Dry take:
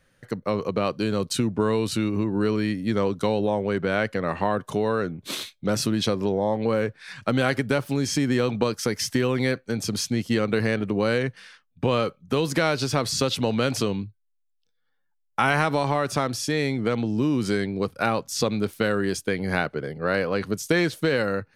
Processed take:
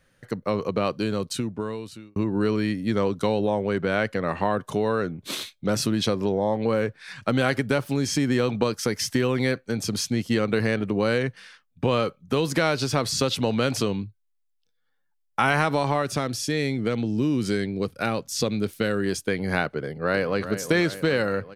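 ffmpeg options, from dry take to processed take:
ffmpeg -i in.wav -filter_complex "[0:a]asettb=1/sr,asplit=3[link_01][link_02][link_03];[link_01]atrim=end=16.024[link_04];[link_02]atrim=start=16.02:end=19.06,asetpts=PTS-STARTPTS,afade=type=in:duration=0.004:curve=qsin,afade=type=out:start_time=3.036:duration=0.004:curve=qsin,equalizer=frequency=960:width_type=o:width=1.2:gain=-6[link_05];[link_03]atrim=start=19.056[link_06];[link_04][link_05]acrossfade=duration=0.004:curve1=hsin:curve2=qsin[link_07];[link_07][link_06]acrossfade=duration=0.004:curve1=qsin:curve2=hsin,asplit=2[link_08][link_09];[link_09]afade=type=in:start_time=19.75:duration=0.01,afade=type=out:start_time=20.45:duration=0.01,aecho=0:1:390|780|1170|1560|1950|2340|2730|3120:0.281838|0.183195|0.119077|0.0773998|0.0503099|0.0327014|0.0212559|0.0138164[link_10];[link_08][link_10]amix=inputs=2:normalize=0,asplit=2[link_11][link_12];[link_11]atrim=end=2.16,asetpts=PTS-STARTPTS,afade=type=out:start_time=0.93:duration=1.23[link_13];[link_12]atrim=start=2.16,asetpts=PTS-STARTPTS,afade=type=in:duration=0.004:curve=hsin[link_14];[link_13][link_14]concat=n=2:v=0:a=1" out.wav

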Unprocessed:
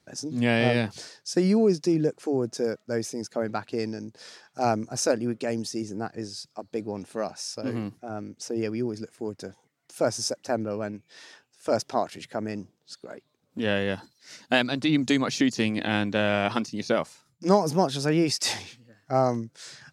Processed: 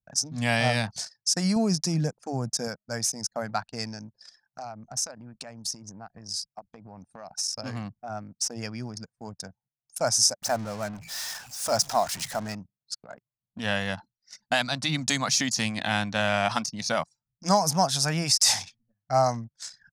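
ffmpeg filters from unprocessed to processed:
ffmpeg -i in.wav -filter_complex "[0:a]asettb=1/sr,asplit=3[link_01][link_02][link_03];[link_01]atrim=end=1.564[link_04];[link_02]atrim=start=1.56:end=2.68,asetpts=PTS-STARTPTS,afade=type=in:duration=0.004:curve=qsin,afade=type=out:start_time=1.116:duration=0.004:curve=qsin,lowshelf=frequency=350:gain=5.5[link_05];[link_03]atrim=start=2.676[link_06];[link_04][link_05]acrossfade=duration=0.004:curve1=hsin:curve2=qsin[link_07];[link_07][link_06]acrossfade=duration=0.004:curve1=qsin:curve2=hsin,asplit=3[link_08][link_09][link_10];[link_08]afade=type=out:start_time=4.06:duration=0.02[link_11];[link_09]acompressor=threshold=-35dB:ratio=6:attack=3.2:release=140:knee=1:detection=peak,afade=type=in:start_time=4.06:duration=0.02,afade=type=out:start_time=7.55:duration=0.02[link_12];[link_10]afade=type=in:start_time=7.55:duration=0.02[link_13];[link_11][link_12][link_13]amix=inputs=3:normalize=0,asettb=1/sr,asplit=3[link_14][link_15][link_16];[link_14]atrim=end=10.424[link_17];[link_15]atrim=start=10.42:end=12.55,asetpts=PTS-STARTPTS,afade=type=in:duration=0.004:curve=qsin,afade=type=out:start_time=2.126:duration=0.004:curve=qsin,aeval=exprs='val(0)+0.5*0.0133*sgn(val(0))':channel_layout=same[link_18];[link_16]atrim=start=12.546[link_19];[link_17][link_18]acrossfade=duration=0.004:curve1=hsin:curve2=qsin[link_20];[link_20][link_19]acrossfade=duration=0.004:curve1=qsin:curve2=hsin,anlmdn=0.251,firequalizer=gain_entry='entry(170,0);entry(360,-17);entry(690,3);entry(2800,0);entry(5600,11)':delay=0.05:min_phase=1,alimiter=level_in=8dB:limit=-1dB:release=50:level=0:latency=1,volume=-8dB" out.wav

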